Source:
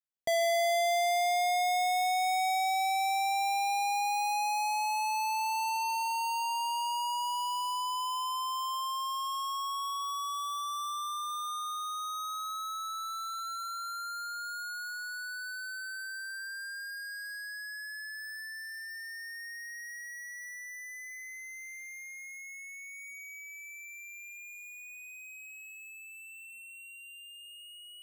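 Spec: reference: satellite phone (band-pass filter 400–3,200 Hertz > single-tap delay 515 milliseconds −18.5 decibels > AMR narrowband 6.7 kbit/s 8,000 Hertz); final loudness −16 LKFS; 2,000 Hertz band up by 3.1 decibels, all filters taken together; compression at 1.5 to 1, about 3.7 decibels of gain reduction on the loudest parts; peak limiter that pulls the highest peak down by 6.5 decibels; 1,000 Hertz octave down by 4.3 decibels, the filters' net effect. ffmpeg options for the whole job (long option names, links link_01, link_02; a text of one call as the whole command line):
ffmpeg -i in.wav -af "equalizer=frequency=1000:width_type=o:gain=-7,equalizer=frequency=2000:width_type=o:gain=6.5,acompressor=threshold=-38dB:ratio=1.5,alimiter=level_in=8.5dB:limit=-24dB:level=0:latency=1,volume=-8.5dB,highpass=400,lowpass=3200,aecho=1:1:515:0.119,volume=24.5dB" -ar 8000 -c:a libopencore_amrnb -b:a 6700 out.amr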